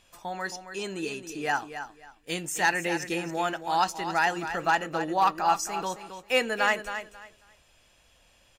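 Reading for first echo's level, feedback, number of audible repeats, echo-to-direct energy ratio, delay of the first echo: -10.0 dB, 22%, 2, -10.0 dB, 0.27 s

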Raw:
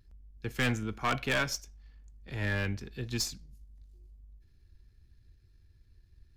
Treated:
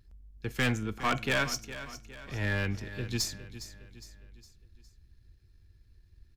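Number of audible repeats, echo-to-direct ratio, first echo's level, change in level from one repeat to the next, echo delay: 4, -12.5 dB, -13.5 dB, -6.5 dB, 0.41 s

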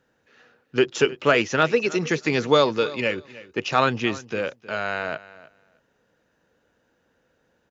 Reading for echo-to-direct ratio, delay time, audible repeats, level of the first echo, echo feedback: -18.5 dB, 0.313 s, 2, -18.5 dB, 16%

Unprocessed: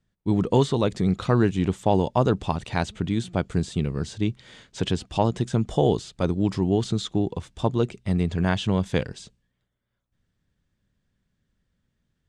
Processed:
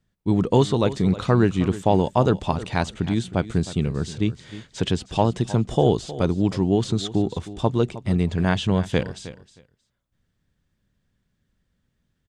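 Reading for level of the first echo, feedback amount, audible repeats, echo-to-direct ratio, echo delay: -15.5 dB, 16%, 2, -15.5 dB, 0.313 s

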